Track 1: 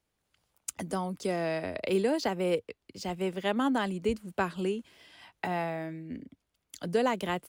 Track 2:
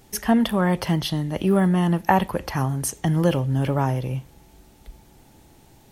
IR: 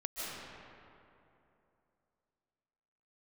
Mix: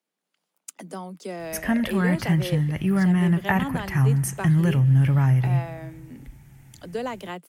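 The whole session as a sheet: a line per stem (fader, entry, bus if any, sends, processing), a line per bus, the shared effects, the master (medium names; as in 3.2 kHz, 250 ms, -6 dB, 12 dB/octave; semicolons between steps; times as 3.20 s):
-3.0 dB, 0.00 s, no send, steep high-pass 160 Hz 96 dB/octave
-2.5 dB, 1.40 s, send -21 dB, ten-band graphic EQ 125 Hz +10 dB, 250 Hz -3 dB, 500 Hz -10 dB, 1 kHz -5 dB, 2 kHz +9 dB, 4 kHz -10 dB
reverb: on, RT60 2.9 s, pre-delay 110 ms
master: none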